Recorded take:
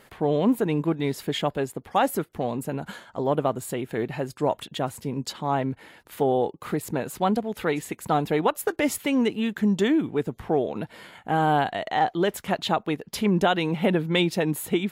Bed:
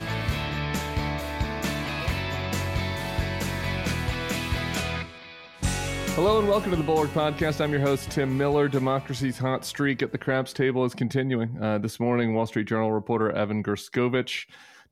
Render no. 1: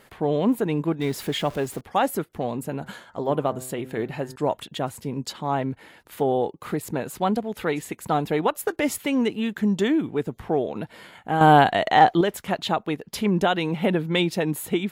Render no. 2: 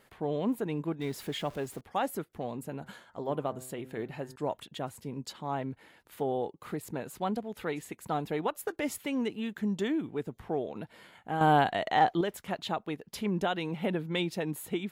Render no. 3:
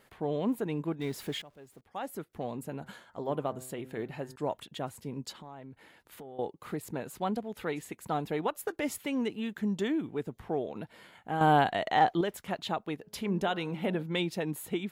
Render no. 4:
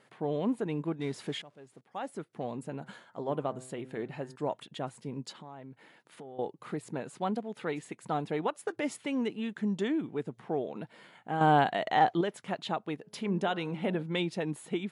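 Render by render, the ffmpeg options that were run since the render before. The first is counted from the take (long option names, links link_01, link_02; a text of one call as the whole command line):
ffmpeg -i in.wav -filter_complex "[0:a]asettb=1/sr,asplit=3[link_01][link_02][link_03];[link_01]atrim=end=1.014[link_04];[link_02]atrim=start=1.01:end=1.81,asetpts=PTS-STARTPTS,afade=type=in:duration=0.004:curve=qsin,afade=type=out:start_time=0.796:duration=0.004:curve=qsin,aeval=exprs='val(0)+0.5*0.0133*sgn(val(0))':channel_layout=same[link_05];[link_03]atrim=start=1.806[link_06];[link_04][link_05]acrossfade=duration=0.004:curve1=hsin:curve2=qsin[link_07];[link_07][link_06]acrossfade=duration=0.004:curve1=qsin:curve2=hsin,asettb=1/sr,asplit=3[link_08][link_09][link_10];[link_08]atrim=end=2.604[link_11];[link_09]atrim=start=2.6:end=4.36,asetpts=PTS-STARTPTS,afade=type=in:duration=0.004:curve=qsin,afade=type=out:start_time=1.756:duration=0.004:curve=qsin,bandreject=frequency=128.6:width_type=h:width=4,bandreject=frequency=257.2:width_type=h:width=4,bandreject=frequency=385.8:width_type=h:width=4,bandreject=frequency=514.4:width_type=h:width=4,bandreject=frequency=643:width_type=h:width=4,bandreject=frequency=771.6:width_type=h:width=4,bandreject=frequency=900.2:width_type=h:width=4,bandreject=frequency=1028.8:width_type=h:width=4,bandreject=frequency=1157.4:width_type=h:width=4,bandreject=frequency=1286:width_type=h:width=4,bandreject=frequency=1414.6:width_type=h:width=4,bandreject=frequency=1543.2:width_type=h:width=4,bandreject=frequency=1671.8:width_type=h:width=4,bandreject=frequency=1800.4:width_type=h:width=4,bandreject=frequency=1929:width_type=h:width=4,bandreject=frequency=2057.6:width_type=h:width=4[link_12];[link_10]atrim=start=4.356[link_13];[link_11][link_12]acrossfade=duration=0.004:curve1=hsin:curve2=qsin[link_14];[link_14][link_13]acrossfade=duration=0.004:curve1=qsin:curve2=hsin,asplit=3[link_15][link_16][link_17];[link_15]atrim=end=11.412[link_18];[link_16]atrim=start=11.408:end=12.212,asetpts=PTS-STARTPTS,volume=7.5dB[link_19];[link_17]atrim=start=12.208[link_20];[link_18][link_19]acrossfade=duration=0.004:curve1=hsin:curve2=hsin[link_21];[link_21][link_20]acrossfade=duration=0.004:curve1=hsin:curve2=hsin" out.wav
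ffmpeg -i in.wav -af "volume=-9dB" out.wav
ffmpeg -i in.wav -filter_complex "[0:a]asettb=1/sr,asplit=3[link_01][link_02][link_03];[link_01]atrim=end=5.344[link_04];[link_02]atrim=start=5.34:end=6.39,asetpts=PTS-STARTPTS,afade=type=in:duration=0.004:curve=qsin,afade=type=out:start_time=1.046:duration=0.004:curve=qsin,acompressor=threshold=-44dB:ratio=5:attack=3.2:release=140:knee=1:detection=peak[link_05];[link_03]atrim=start=6.386[link_06];[link_04][link_05]acrossfade=duration=0.004:curve1=hsin:curve2=qsin[link_07];[link_07][link_06]acrossfade=duration=0.004:curve1=qsin:curve2=hsin,asettb=1/sr,asplit=3[link_08][link_09][link_10];[link_08]atrim=end=13.004[link_11];[link_09]atrim=start=13:end=14.03,asetpts=PTS-STARTPTS,afade=type=in:duration=0.004:curve=qsin,afade=type=out:start_time=1.026:duration=0.004:curve=qsin,bandreject=frequency=106:width_type=h:width=4,bandreject=frequency=212:width_type=h:width=4,bandreject=frequency=318:width_type=h:width=4,bandreject=frequency=424:width_type=h:width=4,bandreject=frequency=530:width_type=h:width=4,bandreject=frequency=636:width_type=h:width=4,bandreject=frequency=742:width_type=h:width=4,bandreject=frequency=848:width_type=h:width=4,bandreject=frequency=954:width_type=h:width=4,bandreject=frequency=1060:width_type=h:width=4,bandreject=frequency=1166:width_type=h:width=4,bandreject=frequency=1272:width_type=h:width=4,bandreject=frequency=1378:width_type=h:width=4,bandreject=frequency=1484:width_type=h:width=4,bandreject=frequency=1590:width_type=h:width=4[link_12];[link_10]atrim=start=14.026[link_13];[link_11][link_12]acrossfade=duration=0.004:curve1=hsin:curve2=qsin[link_14];[link_14][link_13]acrossfade=duration=0.004:curve1=qsin:curve2=hsin,asplit=2[link_15][link_16];[link_15]atrim=end=1.42,asetpts=PTS-STARTPTS,afade=type=out:start_time=1.416:duration=0.004:curve=hsin:silence=0.105925[link_17];[link_16]atrim=start=1.42,asetpts=PTS-STARTPTS,afade=type=in:duration=0.98:curve=qua:silence=0.105925[link_18];[link_17][link_18]concat=n=2:v=0:a=1" out.wav
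ffmpeg -i in.wav -af "afftfilt=real='re*between(b*sr/4096,110,11000)':imag='im*between(b*sr/4096,110,11000)':win_size=4096:overlap=0.75,highshelf=frequency=5100:gain=-4.5" out.wav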